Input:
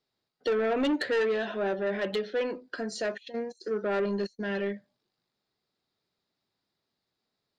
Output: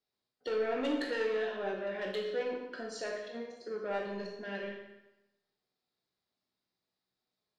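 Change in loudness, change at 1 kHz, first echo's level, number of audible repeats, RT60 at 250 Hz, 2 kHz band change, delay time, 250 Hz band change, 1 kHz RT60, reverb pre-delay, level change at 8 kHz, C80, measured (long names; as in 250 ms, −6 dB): −6.0 dB, −5.0 dB, no echo audible, no echo audible, 0.95 s, −5.5 dB, no echo audible, −7.5 dB, 0.95 s, 16 ms, −5.5 dB, 6.0 dB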